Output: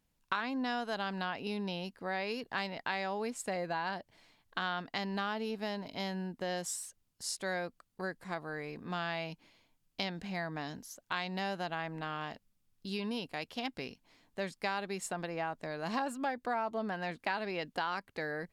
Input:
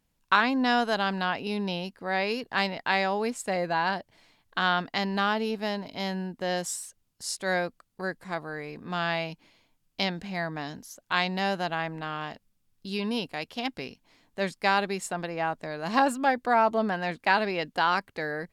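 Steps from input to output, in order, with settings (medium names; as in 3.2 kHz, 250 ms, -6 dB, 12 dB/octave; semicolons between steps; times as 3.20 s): compression 3:1, threshold -30 dBFS, peak gain reduction 10.5 dB; trim -3.5 dB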